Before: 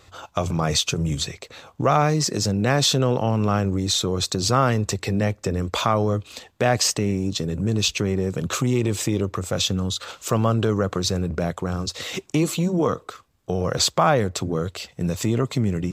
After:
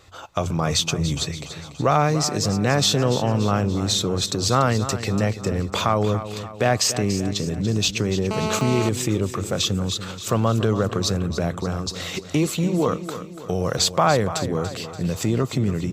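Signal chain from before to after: 13.08–13.77 high shelf 5500 Hz +9.5 dB; feedback echo 0.288 s, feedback 51%, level -12 dB; 8.31–8.89 GSM buzz -26 dBFS

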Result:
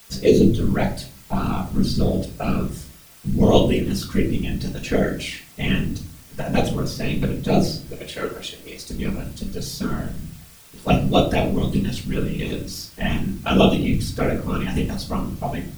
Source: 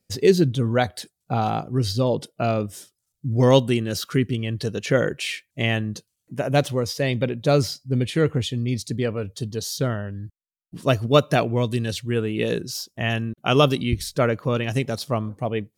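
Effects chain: 7.9–8.81 HPF 430 Hz 12 dB/oct; envelope flanger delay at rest 2.8 ms, full sweep at -13.5 dBFS; in parallel at -11 dB: requantised 6-bit, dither triangular; on the sum: whisperiser; shoebox room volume 390 m³, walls furnished, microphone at 1.6 m; gain -2.5 dB

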